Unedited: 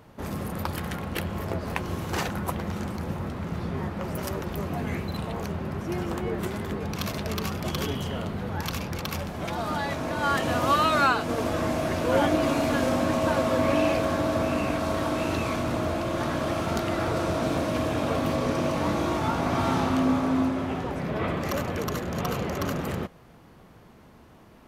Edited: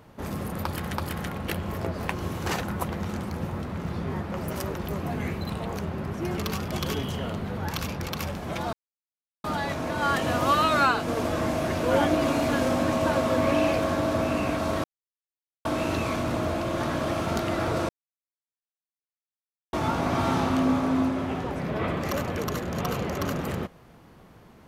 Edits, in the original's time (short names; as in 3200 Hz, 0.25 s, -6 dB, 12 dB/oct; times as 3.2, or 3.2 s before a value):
0.61–0.94 loop, 2 plays
6.05–7.3 cut
9.65 insert silence 0.71 s
15.05 insert silence 0.81 s
17.29–19.13 mute